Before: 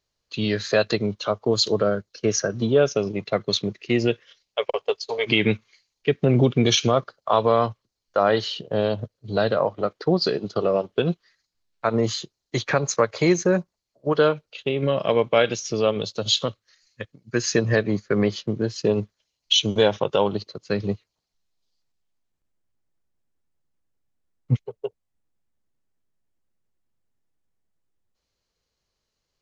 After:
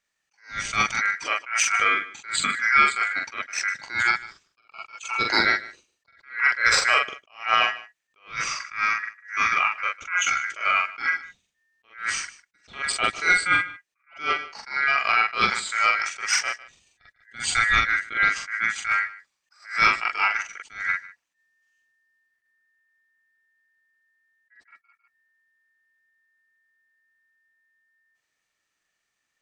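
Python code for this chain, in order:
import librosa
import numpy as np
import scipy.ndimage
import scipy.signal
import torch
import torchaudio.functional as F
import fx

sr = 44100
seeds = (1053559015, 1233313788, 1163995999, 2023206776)

p1 = fx.peak_eq(x, sr, hz=1400.0, db=-8.5, octaves=0.83, at=(8.72, 10.45))
p2 = 10.0 ** (-17.0 / 20.0) * np.tanh(p1 / 10.0 ** (-17.0 / 20.0))
p3 = p1 + F.gain(torch.from_numpy(p2), -11.0).numpy()
p4 = p3 * np.sin(2.0 * np.pi * 1800.0 * np.arange(len(p3)) / sr)
p5 = fx.doubler(p4, sr, ms=44.0, db=-3.5)
p6 = p5 + fx.echo_single(p5, sr, ms=151, db=-19.0, dry=0)
y = fx.attack_slew(p6, sr, db_per_s=170.0)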